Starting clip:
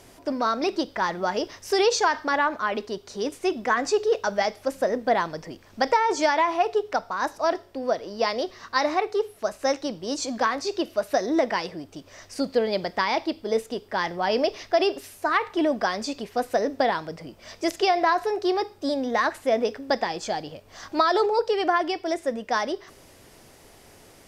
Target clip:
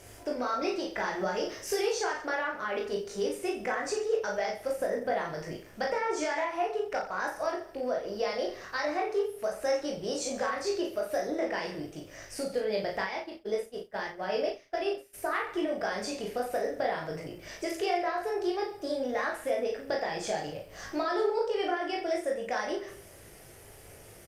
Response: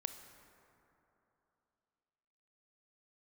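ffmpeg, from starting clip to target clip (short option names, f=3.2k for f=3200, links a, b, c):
-filter_complex "[0:a]acompressor=threshold=-28dB:ratio=4,equalizer=f=250:t=o:w=0.67:g=-9,equalizer=f=1k:t=o:w=0.67:g=-8,equalizer=f=4k:t=o:w=0.67:g=-7,aecho=1:1:20|48|87.2|142.1|218.9:0.631|0.398|0.251|0.158|0.1,asplit=3[a][b][c];[a]afade=t=out:st=13.04:d=0.02[d];[b]agate=range=-33dB:threshold=-28dB:ratio=3:detection=peak,afade=t=in:st=13.04:d=0.02,afade=t=out:st=15.13:d=0.02[e];[c]afade=t=in:st=15.13:d=0.02[f];[d][e][f]amix=inputs=3:normalize=0,asplit=2[g][h];[h]adelay=37,volume=-4dB[i];[g][i]amix=inputs=2:normalize=0" -ar 48000 -c:a libopus -b:a 48k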